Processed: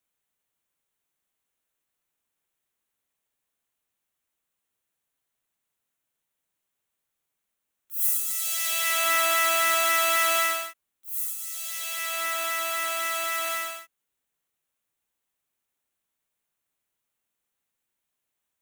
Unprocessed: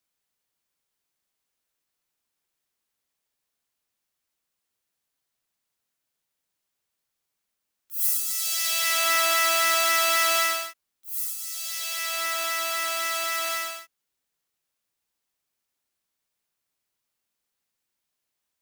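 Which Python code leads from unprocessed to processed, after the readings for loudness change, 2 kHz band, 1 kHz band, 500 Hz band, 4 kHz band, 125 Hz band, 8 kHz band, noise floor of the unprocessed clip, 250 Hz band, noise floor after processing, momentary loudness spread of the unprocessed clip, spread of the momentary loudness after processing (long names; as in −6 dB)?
−1.0 dB, −0.5 dB, 0.0 dB, 0.0 dB, −3.5 dB, can't be measured, −1.5 dB, −82 dBFS, 0.0 dB, −83 dBFS, 10 LU, 11 LU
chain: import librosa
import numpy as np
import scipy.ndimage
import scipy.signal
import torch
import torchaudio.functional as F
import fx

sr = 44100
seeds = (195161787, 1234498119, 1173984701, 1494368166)

y = fx.peak_eq(x, sr, hz=4900.0, db=-9.5, octaves=0.48)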